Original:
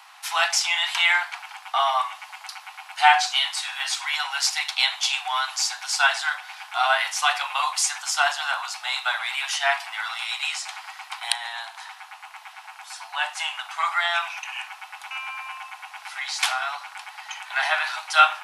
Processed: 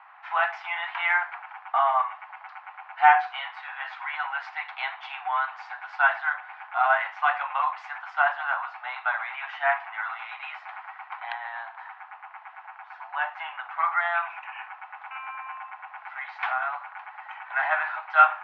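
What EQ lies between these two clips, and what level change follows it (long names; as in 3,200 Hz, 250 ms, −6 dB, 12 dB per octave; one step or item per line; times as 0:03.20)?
low-pass filter 1,900 Hz 24 dB per octave
0.0 dB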